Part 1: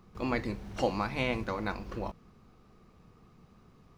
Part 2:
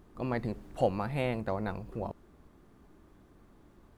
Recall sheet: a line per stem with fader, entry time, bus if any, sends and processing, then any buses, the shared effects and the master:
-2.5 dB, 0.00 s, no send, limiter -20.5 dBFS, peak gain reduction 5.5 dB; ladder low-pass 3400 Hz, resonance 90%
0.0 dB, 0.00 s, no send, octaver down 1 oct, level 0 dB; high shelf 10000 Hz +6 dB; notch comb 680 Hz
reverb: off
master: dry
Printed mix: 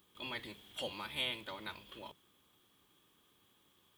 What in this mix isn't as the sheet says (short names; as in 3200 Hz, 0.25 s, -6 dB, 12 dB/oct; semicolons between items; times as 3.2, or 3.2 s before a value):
stem 2 0.0 dB -> -10.0 dB; master: extra tilt +4 dB/oct